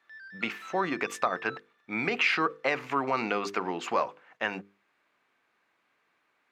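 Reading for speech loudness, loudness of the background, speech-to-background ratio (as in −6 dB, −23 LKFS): −30.0 LKFS, −46.0 LKFS, 16.0 dB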